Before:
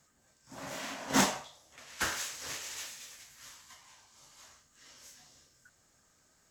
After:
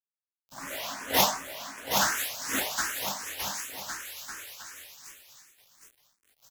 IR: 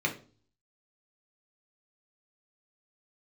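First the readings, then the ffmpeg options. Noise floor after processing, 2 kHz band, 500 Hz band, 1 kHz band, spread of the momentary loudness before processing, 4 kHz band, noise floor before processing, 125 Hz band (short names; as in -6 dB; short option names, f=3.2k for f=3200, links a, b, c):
under -85 dBFS, +5.5 dB, +6.0 dB, +7.0 dB, 25 LU, +8.0 dB, -69 dBFS, +0.5 dB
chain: -filter_complex "[0:a]equalizer=f=190:t=o:w=2.3:g=-6.5,aexciter=amount=3.1:drive=5.5:freq=11k,aeval=exprs='val(0)*gte(abs(val(0)),0.00422)':c=same,aecho=1:1:770|1386|1879|2273|2588:0.631|0.398|0.251|0.158|0.1,asplit=2[a][b];[b]afreqshift=2.7[c];[a][c]amix=inputs=2:normalize=1,volume=8dB"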